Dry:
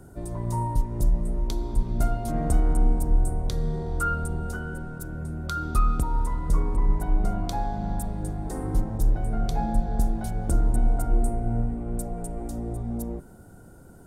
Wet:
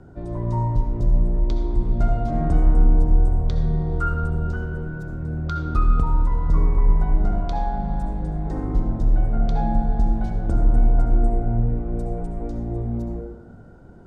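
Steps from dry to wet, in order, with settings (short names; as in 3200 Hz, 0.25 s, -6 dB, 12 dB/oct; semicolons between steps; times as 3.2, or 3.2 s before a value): air absorption 190 m; reverb RT60 1.0 s, pre-delay 58 ms, DRR 5 dB; gain +2 dB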